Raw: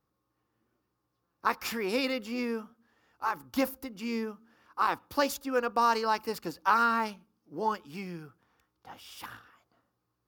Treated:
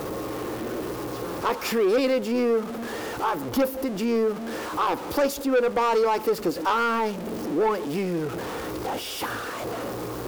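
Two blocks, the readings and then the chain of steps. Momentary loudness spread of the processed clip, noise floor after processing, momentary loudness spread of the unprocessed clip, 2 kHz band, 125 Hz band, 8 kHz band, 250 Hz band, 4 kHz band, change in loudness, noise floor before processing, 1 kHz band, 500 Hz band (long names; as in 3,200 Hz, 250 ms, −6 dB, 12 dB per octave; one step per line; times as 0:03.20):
10 LU, −34 dBFS, 18 LU, +3.0 dB, +12.5 dB, +7.5 dB, +8.5 dB, +5.5 dB, +5.0 dB, −81 dBFS, +3.0 dB, +11.5 dB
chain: converter with a step at zero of −37.5 dBFS
parametric band 440 Hz +13.5 dB 1.6 octaves
in parallel at +3 dB: downward compressor, threshold −31 dBFS, peak gain reduction 18.5 dB
on the sum: soft clipping −15 dBFS, distortion −11 dB
level −1.5 dB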